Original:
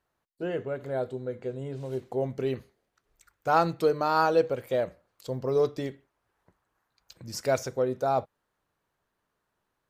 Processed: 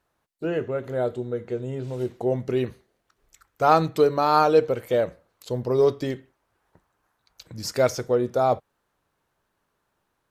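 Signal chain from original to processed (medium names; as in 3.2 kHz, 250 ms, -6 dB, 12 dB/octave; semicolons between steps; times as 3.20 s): speed mistake 25 fps video run at 24 fps; trim +5 dB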